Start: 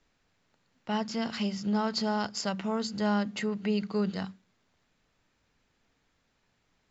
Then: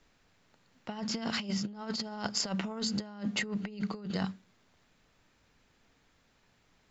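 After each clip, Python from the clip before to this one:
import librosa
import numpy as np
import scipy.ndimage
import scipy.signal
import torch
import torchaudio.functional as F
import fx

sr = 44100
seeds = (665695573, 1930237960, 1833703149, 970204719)

y = fx.over_compress(x, sr, threshold_db=-34.0, ratio=-0.5)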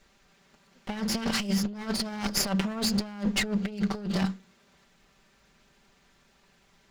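y = fx.lower_of_two(x, sr, delay_ms=5.1)
y = F.gain(torch.from_numpy(y), 7.0).numpy()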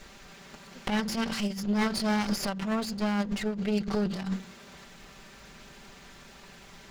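y = fx.over_compress(x, sr, threshold_db=-37.0, ratio=-1.0)
y = F.gain(torch.from_numpy(y), 6.5).numpy()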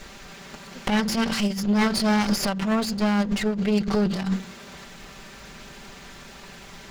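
y = 10.0 ** (-18.0 / 20.0) * np.tanh(x / 10.0 ** (-18.0 / 20.0))
y = F.gain(torch.from_numpy(y), 7.0).numpy()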